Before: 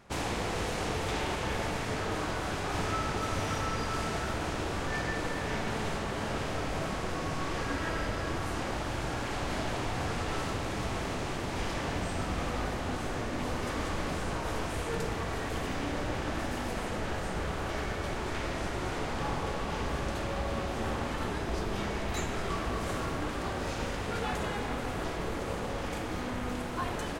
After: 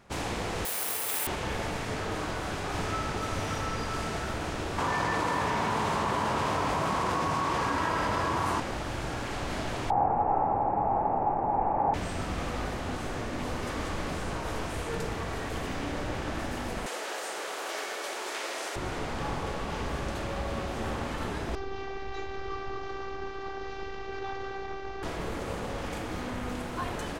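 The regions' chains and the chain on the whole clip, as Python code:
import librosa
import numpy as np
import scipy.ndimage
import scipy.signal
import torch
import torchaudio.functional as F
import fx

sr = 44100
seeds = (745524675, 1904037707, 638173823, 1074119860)

y = fx.chain(x, sr, fx.highpass(hz=1000.0, slope=6),
    fx.resample_bad(factor=4, down='none', up='zero_stuff'), at=(0.65, 1.27))
y = fx.chain(y, sr, fx.highpass(hz=76.0, slope=12),
    fx.peak_eq(hz=1000.0, db=12.5, octaves=0.41),
    fx.env_flatten(amount_pct=100), at=(4.78, 8.6))
y = fx.chain(y, sr, fx.lowpass_res(hz=820.0, q=10.0),
    fx.peak_eq(hz=65.0, db=-6.5, octaves=1.3),
    fx.resample_bad(factor=8, down='none', up='filtered'), at=(9.9, 11.94))
y = fx.chain(y, sr, fx.highpass(hz=380.0, slope=24),
    fx.high_shelf(hz=3800.0, db=10.0), at=(16.86, 18.76))
y = fx.chain(y, sr, fx.cvsd(bps=32000),
    fx.robotise(hz=390.0),
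    fx.lowpass(hz=2500.0, slope=6), at=(21.55, 25.03))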